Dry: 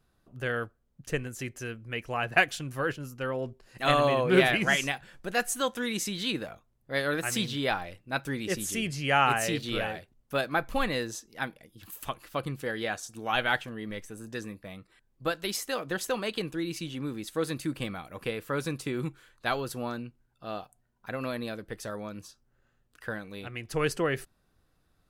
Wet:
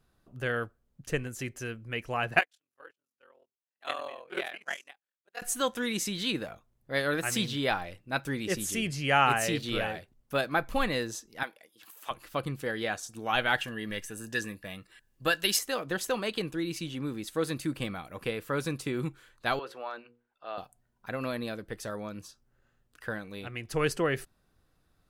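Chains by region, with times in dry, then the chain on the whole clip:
2.39–5.42 s: high-pass 490 Hz + ring modulator 21 Hz + upward expansion 2.5:1, over -48 dBFS
11.43–12.11 s: de-esser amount 90% + high-pass 520 Hz
13.58–15.59 s: treble shelf 2.8 kHz +8 dB + small resonant body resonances 1.7/2.8 kHz, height 12 dB, ringing for 30 ms
19.59–20.58 s: three-band isolator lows -23 dB, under 420 Hz, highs -20 dB, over 3.8 kHz + hum notches 60/120/180/240/300/360/420/480/540 Hz
whole clip: none

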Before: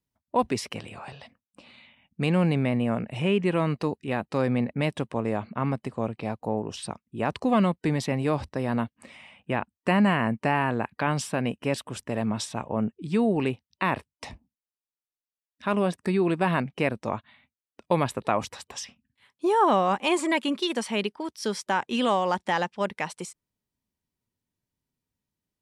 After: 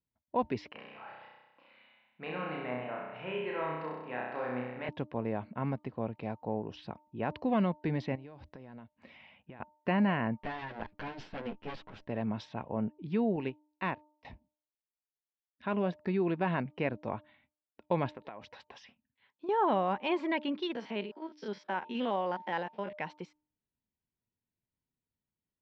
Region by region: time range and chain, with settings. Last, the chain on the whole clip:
0.72–4.89 s: band-pass filter 1.3 kHz, Q 1 + flutter echo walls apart 5.5 m, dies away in 1.1 s
8.15–9.60 s: compression 10:1, threshold -38 dBFS + treble shelf 6.3 kHz +8.5 dB
10.39–12.08 s: comb filter that takes the minimum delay 9.7 ms + peaking EQ 120 Hz -8 dB 0.24 oct
13.36–14.25 s: median filter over 5 samples + treble shelf 5.7 kHz +11 dB + upward expansion 2.5:1, over -38 dBFS
18.09–19.49 s: bass shelf 140 Hz -10 dB + compression 8:1, threshold -33 dBFS
20.75–22.93 s: spectrogram pixelated in time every 50 ms + high-pass 190 Hz
whole clip: Bessel low-pass 2.8 kHz, order 8; band-stop 1.2 kHz, Q 8.6; de-hum 302 Hz, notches 4; trim -6.5 dB

